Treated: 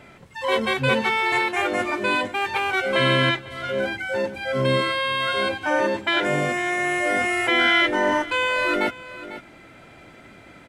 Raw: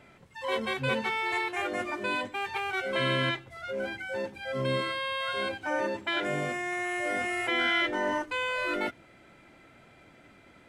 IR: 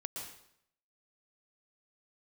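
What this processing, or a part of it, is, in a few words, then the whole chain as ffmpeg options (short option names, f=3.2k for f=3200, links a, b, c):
ducked delay: -filter_complex "[0:a]asplit=3[a][b][c];[b]adelay=498,volume=-6dB[d];[c]apad=whole_len=493109[e];[d][e]sidechaincompress=threshold=-38dB:ratio=8:attack=16:release=1230[f];[a][f]amix=inputs=2:normalize=0,volume=8.5dB"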